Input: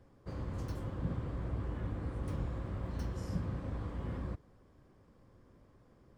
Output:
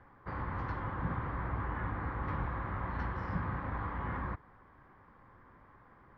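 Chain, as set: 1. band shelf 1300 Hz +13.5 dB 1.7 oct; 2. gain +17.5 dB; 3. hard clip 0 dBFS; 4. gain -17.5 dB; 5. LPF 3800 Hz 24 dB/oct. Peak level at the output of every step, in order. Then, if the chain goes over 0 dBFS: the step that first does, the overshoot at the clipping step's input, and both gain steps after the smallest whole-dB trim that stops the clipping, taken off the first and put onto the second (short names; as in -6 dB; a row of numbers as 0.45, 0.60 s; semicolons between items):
-22.5, -5.0, -5.0, -22.5, -22.5 dBFS; no overload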